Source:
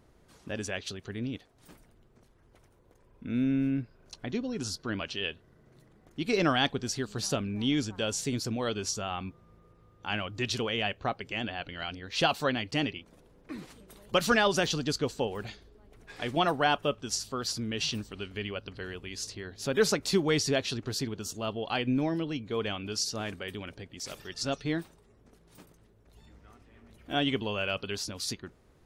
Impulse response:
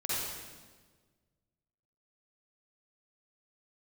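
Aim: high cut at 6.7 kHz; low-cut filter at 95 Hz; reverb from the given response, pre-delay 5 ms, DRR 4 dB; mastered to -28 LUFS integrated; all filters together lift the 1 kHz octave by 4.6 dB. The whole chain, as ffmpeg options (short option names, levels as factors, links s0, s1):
-filter_complex "[0:a]highpass=95,lowpass=6700,equalizer=f=1000:t=o:g=6.5,asplit=2[s0][s1];[1:a]atrim=start_sample=2205,adelay=5[s2];[s1][s2]afir=irnorm=-1:irlink=0,volume=0.299[s3];[s0][s3]amix=inputs=2:normalize=0,volume=1.12"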